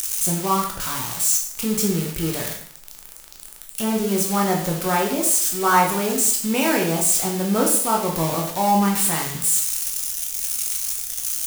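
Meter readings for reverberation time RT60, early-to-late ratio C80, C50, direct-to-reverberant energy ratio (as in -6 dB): 0.60 s, 9.5 dB, 5.5 dB, -1.0 dB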